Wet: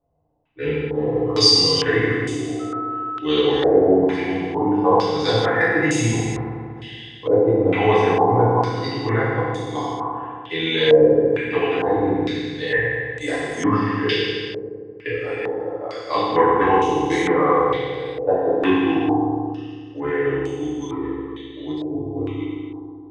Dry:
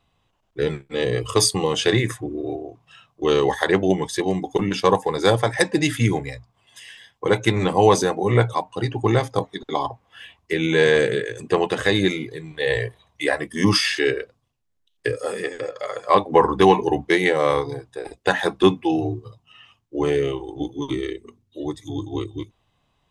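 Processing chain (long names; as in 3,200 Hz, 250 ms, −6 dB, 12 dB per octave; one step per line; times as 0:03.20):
feedback delay network reverb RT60 2.1 s, low-frequency decay 1.2×, high-frequency decay 0.9×, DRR −9.5 dB
0:02.59–0:03.25: steady tone 1,300 Hz −23 dBFS
low-pass on a step sequencer 2.2 Hz 600–7,100 Hz
level −12 dB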